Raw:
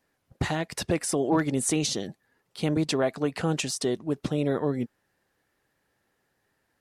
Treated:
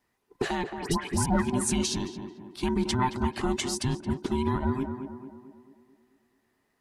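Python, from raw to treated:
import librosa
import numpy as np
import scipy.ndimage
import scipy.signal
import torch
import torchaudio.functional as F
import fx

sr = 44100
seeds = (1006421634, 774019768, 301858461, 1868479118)

y = fx.band_invert(x, sr, width_hz=500)
y = fx.dispersion(y, sr, late='highs', ms=139.0, hz=1400.0, at=(0.64, 1.26))
y = fx.echo_tape(y, sr, ms=221, feedback_pct=58, wet_db=-5.0, lp_hz=1300.0, drive_db=17.0, wow_cents=15)
y = y * 10.0 ** (-1.5 / 20.0)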